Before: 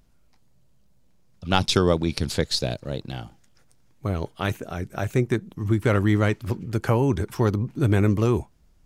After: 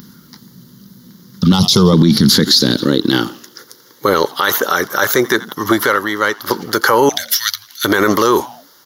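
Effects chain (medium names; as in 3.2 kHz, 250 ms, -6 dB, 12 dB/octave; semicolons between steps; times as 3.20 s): treble shelf 5.6 kHz +12 dB; static phaser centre 2.5 kHz, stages 6; 5.80–6.51 s: compression 3:1, threshold -36 dBFS, peak gain reduction 14 dB; 7.09–7.85 s: inverse Chebyshev band-stop 220–580 Hz, stop band 80 dB; saturation -7.5 dBFS, distortion -27 dB; 1.52–1.93 s: static phaser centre 690 Hz, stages 4; frequency-shifting echo 85 ms, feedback 50%, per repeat -120 Hz, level -23 dB; high-pass sweep 200 Hz -> 620 Hz, 2.24–4.40 s; loudness maximiser +26.5 dB; trim -1 dB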